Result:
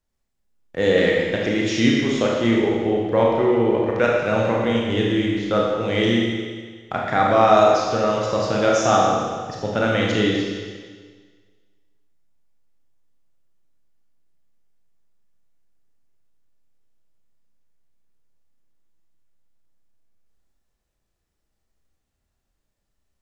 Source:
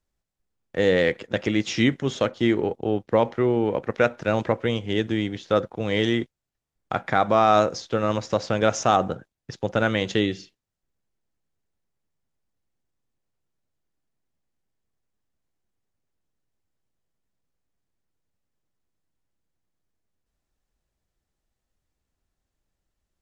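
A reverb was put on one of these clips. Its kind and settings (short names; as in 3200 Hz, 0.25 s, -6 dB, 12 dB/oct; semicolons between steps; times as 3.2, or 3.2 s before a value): Schroeder reverb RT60 1.6 s, combs from 27 ms, DRR -3 dB; gain -1 dB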